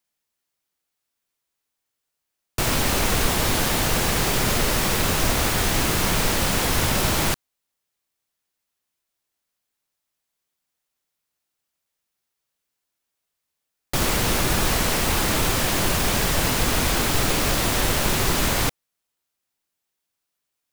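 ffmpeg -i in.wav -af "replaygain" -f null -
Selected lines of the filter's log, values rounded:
track_gain = +6.9 dB
track_peak = 0.307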